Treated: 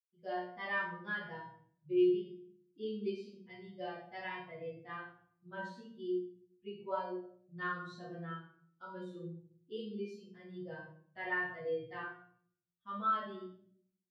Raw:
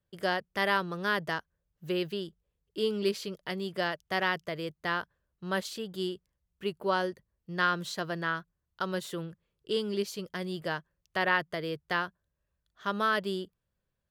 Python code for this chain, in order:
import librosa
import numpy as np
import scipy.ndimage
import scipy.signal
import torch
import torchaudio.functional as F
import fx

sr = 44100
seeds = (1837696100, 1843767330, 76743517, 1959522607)

y = fx.bin_expand(x, sr, power=2.0)
y = scipy.signal.sosfilt(scipy.signal.butter(2, 89.0, 'highpass', fs=sr, output='sos'), y)
y = fx.spacing_loss(y, sr, db_at_10k=27)
y = fx.comb_fb(y, sr, f0_hz=120.0, decay_s=0.38, harmonics='all', damping=0.0, mix_pct=90)
y = fx.room_shoebox(y, sr, seeds[0], volume_m3=83.0, walls='mixed', distance_m=2.0)
y = y * librosa.db_to_amplitude(-1.5)